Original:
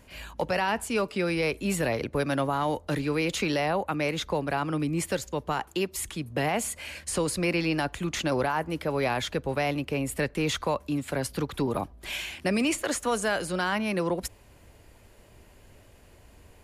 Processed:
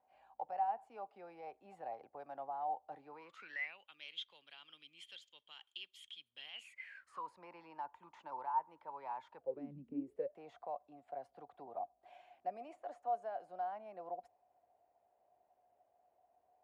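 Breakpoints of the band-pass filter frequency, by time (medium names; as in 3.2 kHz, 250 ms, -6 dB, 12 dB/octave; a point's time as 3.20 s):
band-pass filter, Q 18
3.09 s 770 Hz
3.87 s 3.2 kHz
6.53 s 3.2 kHz
7.29 s 920 Hz
9.36 s 920 Hz
9.75 s 170 Hz
10.38 s 720 Hz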